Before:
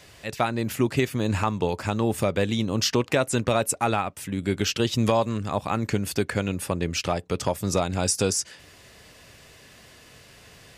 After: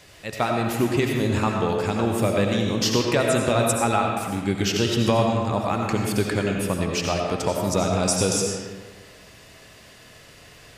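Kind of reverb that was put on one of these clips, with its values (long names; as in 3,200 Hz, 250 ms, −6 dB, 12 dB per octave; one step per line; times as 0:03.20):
comb and all-pass reverb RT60 1.5 s, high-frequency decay 0.65×, pre-delay 45 ms, DRR 0.5 dB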